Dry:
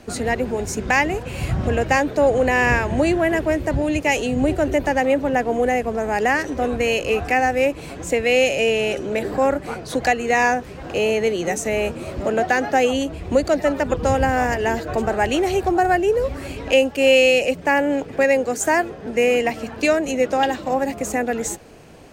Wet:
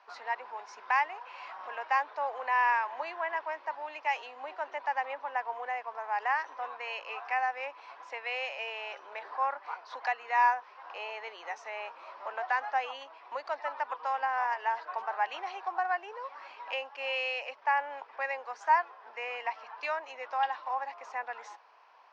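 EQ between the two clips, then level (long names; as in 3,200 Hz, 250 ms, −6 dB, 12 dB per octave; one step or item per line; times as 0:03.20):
four-pole ladder high-pass 900 Hz, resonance 70%
low-pass with resonance 5,600 Hz, resonance Q 4.5
high-frequency loss of the air 380 metres
0.0 dB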